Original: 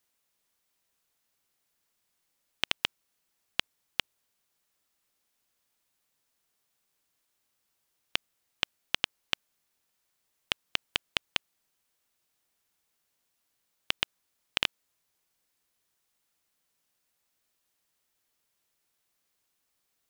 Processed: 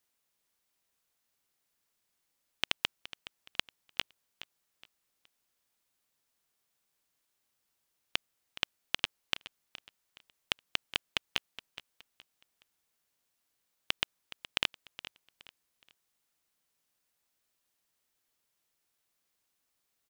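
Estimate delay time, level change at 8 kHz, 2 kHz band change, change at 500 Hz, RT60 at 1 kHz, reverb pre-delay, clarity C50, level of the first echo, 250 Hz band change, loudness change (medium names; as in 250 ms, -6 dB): 419 ms, -2.5 dB, -2.5 dB, -2.5 dB, no reverb, no reverb, no reverb, -15.5 dB, -2.5 dB, -2.5 dB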